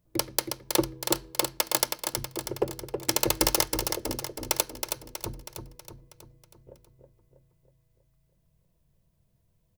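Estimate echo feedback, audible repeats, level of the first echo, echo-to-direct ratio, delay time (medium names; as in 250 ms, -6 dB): 54%, 6, -6.0 dB, -4.5 dB, 321 ms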